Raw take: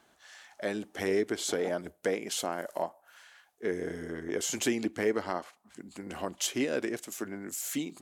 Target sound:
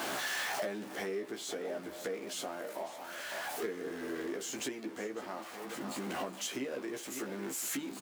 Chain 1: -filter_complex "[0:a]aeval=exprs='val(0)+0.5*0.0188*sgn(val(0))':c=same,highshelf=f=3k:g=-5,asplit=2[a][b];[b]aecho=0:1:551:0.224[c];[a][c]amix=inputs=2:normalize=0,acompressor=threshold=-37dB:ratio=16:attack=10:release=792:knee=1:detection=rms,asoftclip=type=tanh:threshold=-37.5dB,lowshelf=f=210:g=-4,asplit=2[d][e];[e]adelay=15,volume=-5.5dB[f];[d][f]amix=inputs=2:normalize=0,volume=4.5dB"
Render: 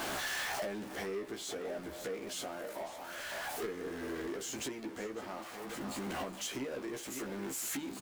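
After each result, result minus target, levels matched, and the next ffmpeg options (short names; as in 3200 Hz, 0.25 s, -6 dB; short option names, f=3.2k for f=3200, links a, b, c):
soft clip: distortion +12 dB; 125 Hz band +3.0 dB
-filter_complex "[0:a]aeval=exprs='val(0)+0.5*0.0188*sgn(val(0))':c=same,highshelf=f=3k:g=-5,asplit=2[a][b];[b]aecho=0:1:551:0.224[c];[a][c]amix=inputs=2:normalize=0,acompressor=threshold=-37dB:ratio=16:attack=10:release=792:knee=1:detection=rms,asoftclip=type=tanh:threshold=-29.5dB,lowshelf=f=210:g=-4,asplit=2[d][e];[e]adelay=15,volume=-5.5dB[f];[d][f]amix=inputs=2:normalize=0,volume=4.5dB"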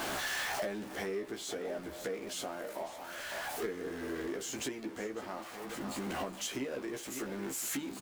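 125 Hz band +3.0 dB
-filter_complex "[0:a]aeval=exprs='val(0)+0.5*0.0188*sgn(val(0))':c=same,highshelf=f=3k:g=-5,asplit=2[a][b];[b]aecho=0:1:551:0.224[c];[a][c]amix=inputs=2:normalize=0,acompressor=threshold=-37dB:ratio=16:attack=10:release=792:knee=1:detection=rms,highpass=160,asoftclip=type=tanh:threshold=-29.5dB,lowshelf=f=210:g=-4,asplit=2[d][e];[e]adelay=15,volume=-5.5dB[f];[d][f]amix=inputs=2:normalize=0,volume=4.5dB"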